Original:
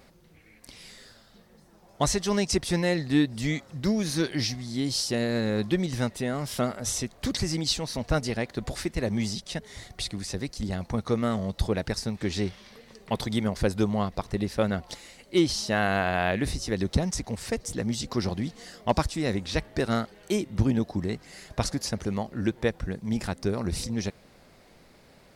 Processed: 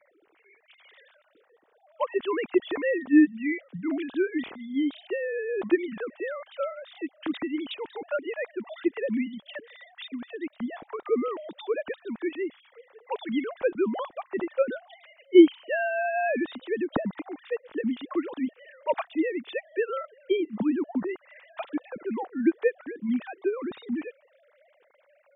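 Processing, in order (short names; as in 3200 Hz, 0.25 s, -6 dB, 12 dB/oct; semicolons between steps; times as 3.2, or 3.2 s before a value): sine-wave speech; 11.28–11.86 HPF 270 Hz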